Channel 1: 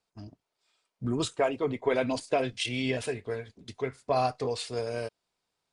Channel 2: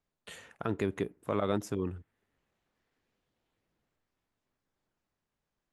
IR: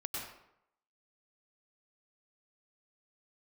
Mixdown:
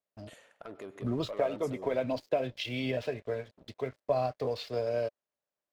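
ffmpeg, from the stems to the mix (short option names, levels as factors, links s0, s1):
-filter_complex "[0:a]lowpass=f=5100:w=0.5412,lowpass=f=5100:w=1.3066,acrossover=split=220[s0][s1];[s1]acompressor=threshold=0.0282:ratio=4[s2];[s0][s2]amix=inputs=2:normalize=0,aeval=exprs='sgn(val(0))*max(abs(val(0))-0.00188,0)':c=same,volume=0.841[s3];[1:a]highpass=f=400:p=1,asoftclip=type=tanh:threshold=0.0282,volume=0.376,asplit=2[s4][s5];[s5]volume=0.211[s6];[2:a]atrim=start_sample=2205[s7];[s6][s7]afir=irnorm=-1:irlink=0[s8];[s3][s4][s8]amix=inputs=3:normalize=0,equalizer=f=590:t=o:w=0.42:g=10.5"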